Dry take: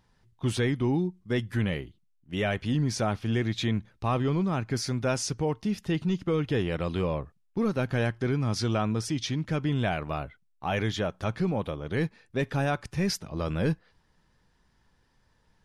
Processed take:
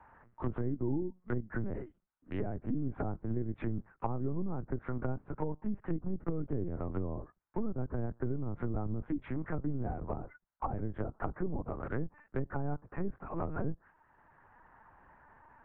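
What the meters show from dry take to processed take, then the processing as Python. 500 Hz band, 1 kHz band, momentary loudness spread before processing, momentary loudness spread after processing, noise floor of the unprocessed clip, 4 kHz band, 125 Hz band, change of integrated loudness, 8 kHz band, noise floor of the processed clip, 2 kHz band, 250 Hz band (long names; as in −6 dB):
−9.5 dB, −8.5 dB, 5 LU, 5 LU, −68 dBFS, below −30 dB, −8.5 dB, −9.0 dB, below −40 dB, −76 dBFS, −14.5 dB, −8.0 dB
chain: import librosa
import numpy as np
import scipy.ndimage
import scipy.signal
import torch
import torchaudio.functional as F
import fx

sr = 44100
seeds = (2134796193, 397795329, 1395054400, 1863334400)

y = fx.wiener(x, sr, points=9)
y = fx.cabinet(y, sr, low_hz=260.0, low_slope=12, high_hz=2100.0, hz=(510.0, 910.0, 1400.0), db=(-9, 7, 6))
y = fx.lpc_vocoder(y, sr, seeds[0], excitation='pitch_kept', order=8)
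y = fx.env_lowpass_down(y, sr, base_hz=350.0, full_db=-28.0)
y = fx.band_squash(y, sr, depth_pct=40)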